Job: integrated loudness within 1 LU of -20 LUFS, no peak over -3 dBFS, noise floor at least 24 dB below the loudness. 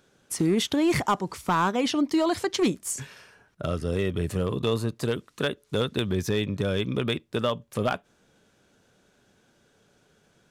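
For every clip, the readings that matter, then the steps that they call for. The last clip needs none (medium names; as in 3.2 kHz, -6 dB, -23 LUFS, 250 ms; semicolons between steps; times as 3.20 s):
clipped samples 0.4%; clipping level -16.0 dBFS; loudness -27.0 LUFS; peak level -16.0 dBFS; loudness target -20.0 LUFS
-> clip repair -16 dBFS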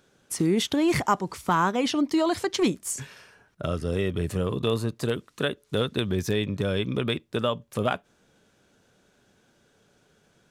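clipped samples 0.0%; loudness -27.0 LUFS; peak level -10.5 dBFS; loudness target -20.0 LUFS
-> trim +7 dB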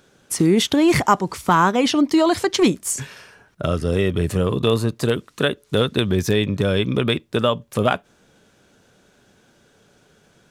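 loudness -20.0 LUFS; peak level -3.5 dBFS; noise floor -58 dBFS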